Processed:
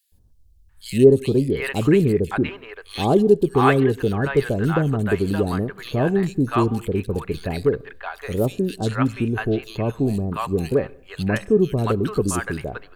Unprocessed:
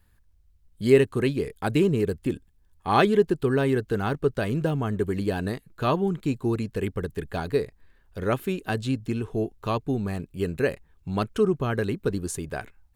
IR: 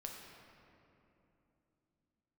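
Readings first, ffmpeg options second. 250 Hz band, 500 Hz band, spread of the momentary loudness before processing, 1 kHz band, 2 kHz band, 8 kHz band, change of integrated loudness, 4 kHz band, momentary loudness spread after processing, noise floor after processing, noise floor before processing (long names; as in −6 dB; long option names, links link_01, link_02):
+5.5 dB, +5.0 dB, 11 LU, +3.5 dB, +4.5 dB, +5.5 dB, +5.0 dB, +3.0 dB, 11 LU, −51 dBFS, −62 dBFS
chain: -filter_complex "[0:a]acrossover=split=750|3000[link_01][link_02][link_03];[link_01]adelay=120[link_04];[link_02]adelay=690[link_05];[link_04][link_05][link_03]amix=inputs=3:normalize=0,asplit=2[link_06][link_07];[1:a]atrim=start_sample=2205,afade=type=out:start_time=0.26:duration=0.01,atrim=end_sample=11907,asetrate=40131,aresample=44100[link_08];[link_07][link_08]afir=irnorm=-1:irlink=0,volume=-16dB[link_09];[link_06][link_09]amix=inputs=2:normalize=0,volume=5dB"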